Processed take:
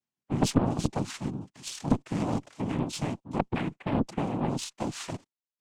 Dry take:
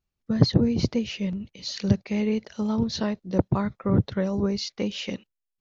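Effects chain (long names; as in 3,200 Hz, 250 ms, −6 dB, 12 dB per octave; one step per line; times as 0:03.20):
cochlear-implant simulation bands 4
harmonic generator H 4 −14 dB, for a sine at −5 dBFS
level −5 dB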